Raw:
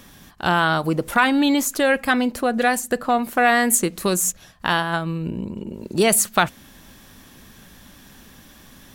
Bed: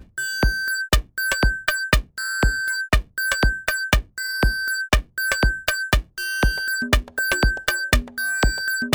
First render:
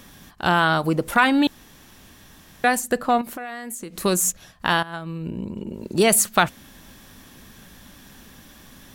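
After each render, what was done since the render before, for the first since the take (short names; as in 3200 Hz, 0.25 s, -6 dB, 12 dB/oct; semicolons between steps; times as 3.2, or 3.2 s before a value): 1.47–2.64 room tone; 3.21–3.97 compressor, threshold -31 dBFS; 4.83–5.88 fade in equal-power, from -14.5 dB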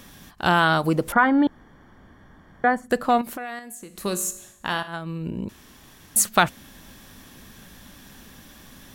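1.12–2.9 polynomial smoothing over 41 samples; 3.59–4.88 resonator 51 Hz, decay 0.79 s; 5.49–6.16 room tone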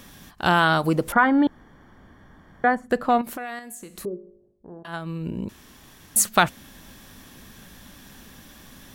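2.75–3.27 high shelf 4200 Hz -9 dB; 4.05–4.85 ladder low-pass 470 Hz, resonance 65%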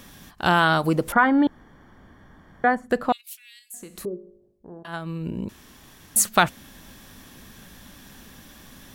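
3.12–3.74 steep high-pass 2600 Hz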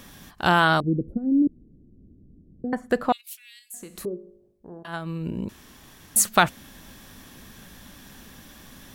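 0.8–2.73 inverse Chebyshev low-pass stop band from 960 Hz, stop band 50 dB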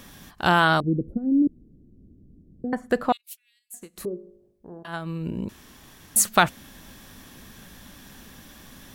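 3.17–4 upward expander 2.5:1, over -50 dBFS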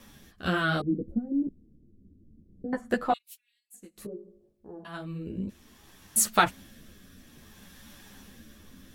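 rotary speaker horn 0.6 Hz; ensemble effect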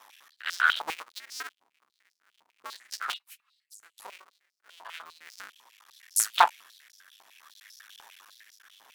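cycle switcher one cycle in 2, muted; stepped high-pass 10 Hz 900–5200 Hz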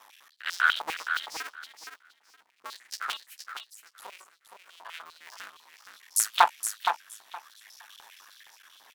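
feedback echo 0.468 s, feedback 17%, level -7 dB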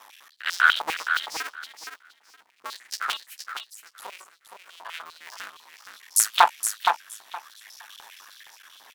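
gain +5 dB; limiter -2 dBFS, peak gain reduction 2.5 dB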